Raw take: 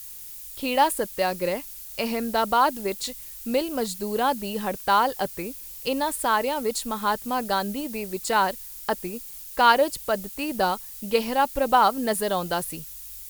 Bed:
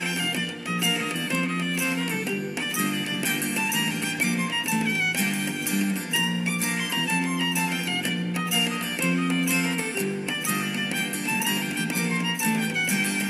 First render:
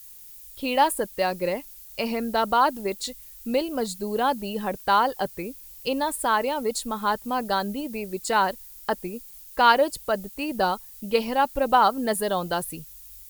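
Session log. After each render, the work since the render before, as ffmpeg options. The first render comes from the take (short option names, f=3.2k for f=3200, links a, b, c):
-af "afftdn=nr=7:nf=-40"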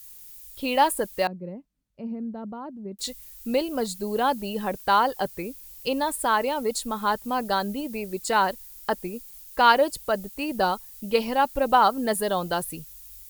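-filter_complex "[0:a]asettb=1/sr,asplit=3[a][b][c];[a]atrim=end=1.274[d];[b]atrim=start=1.27:end=2.99,asetpts=PTS-STARTPTS,afade=t=in:d=0.004:c=qsin,afade=t=out:st=1.716:d=0.004:c=qsin,bandpass=f=190:t=q:w=2.1[e];[c]atrim=start=2.986[f];[d][e]acrossfade=d=0.004:c1=hsin:c2=qsin[g];[g][f]acrossfade=d=0.004:c1=qsin:c2=hsin"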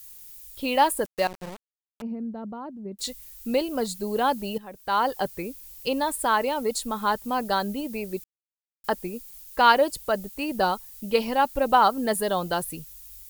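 -filter_complex "[0:a]asettb=1/sr,asplit=3[a][b][c];[a]atrim=end=1.054[d];[b]atrim=start=1.05:end=2.02,asetpts=PTS-STARTPTS,afade=t=in:d=0.004:c=qsin,afade=t=out:st=0.966:d=0.004:c=qsin,aeval=exprs='val(0)*gte(abs(val(0)),0.0224)':c=same[e];[c]atrim=start=2.016[f];[d][e]acrossfade=d=0.004:c1=hsin:c2=qsin[g];[g][f]acrossfade=d=0.004:c1=qsin:c2=hsin,asplit=4[h][i][j][k];[h]atrim=end=4.58,asetpts=PTS-STARTPTS,afade=t=out:st=4.576:d=0.004:c=hsin:silence=0.177828[l];[i]atrim=start=4.58:end=8.24,asetpts=PTS-STARTPTS,afade=t=in:d=0.5:c=qua:silence=0.177828,afade=t=out:st=3.656:d=0.004:c=hsin[m];[j]atrim=start=8.24:end=8.84,asetpts=PTS-STARTPTS,volume=0[n];[k]atrim=start=8.84,asetpts=PTS-STARTPTS,afade=t=in:d=0.004:c=hsin[o];[l][m][n][o]concat=n=4:v=0:a=1"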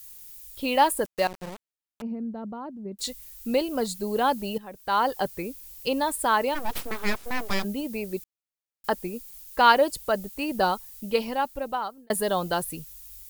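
-filter_complex "[0:a]asplit=3[a][b][c];[a]afade=t=out:st=6.54:d=0.02[d];[b]aeval=exprs='abs(val(0))':c=same,afade=t=in:st=6.54:d=0.02,afade=t=out:st=7.63:d=0.02[e];[c]afade=t=in:st=7.63:d=0.02[f];[d][e][f]amix=inputs=3:normalize=0,asplit=2[g][h];[g]atrim=end=12.1,asetpts=PTS-STARTPTS,afade=t=out:st=10.91:d=1.19[i];[h]atrim=start=12.1,asetpts=PTS-STARTPTS,afade=t=in:d=0.004:c=hsin[j];[i][j]concat=n=2:v=0:a=1"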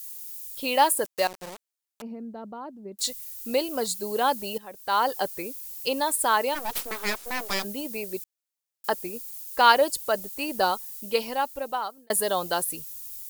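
-af "bass=f=250:g=-10,treble=f=4k:g=6"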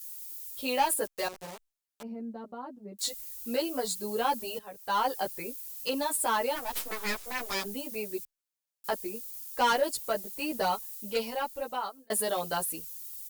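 -filter_complex "[0:a]asoftclip=type=tanh:threshold=-17dB,asplit=2[a][b];[b]adelay=11.4,afreqshift=0.99[c];[a][c]amix=inputs=2:normalize=1"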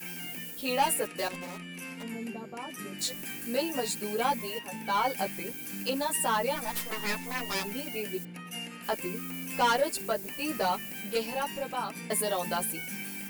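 -filter_complex "[1:a]volume=-16dB[a];[0:a][a]amix=inputs=2:normalize=0"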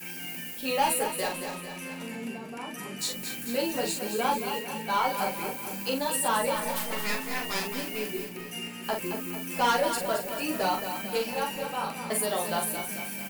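-filter_complex "[0:a]asplit=2[a][b];[b]adelay=42,volume=-5dB[c];[a][c]amix=inputs=2:normalize=0,aecho=1:1:222|444|666|888|1110|1332:0.376|0.203|0.11|0.0592|0.032|0.0173"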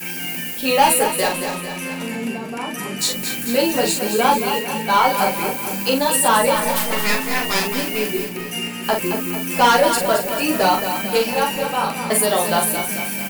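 -af "volume=11dB,alimiter=limit=-2dB:level=0:latency=1"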